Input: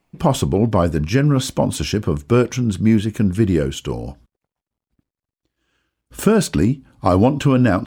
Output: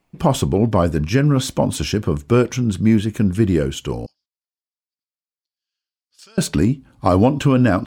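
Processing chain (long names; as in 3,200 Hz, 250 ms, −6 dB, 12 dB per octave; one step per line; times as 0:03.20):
0:04.06–0:06.38: resonant band-pass 4,800 Hz, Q 6.6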